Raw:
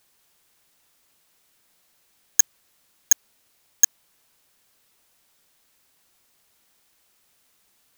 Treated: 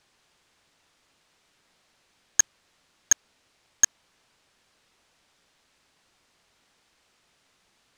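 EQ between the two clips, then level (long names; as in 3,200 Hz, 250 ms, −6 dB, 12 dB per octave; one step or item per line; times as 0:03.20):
high-frequency loss of the air 83 metres
+3.5 dB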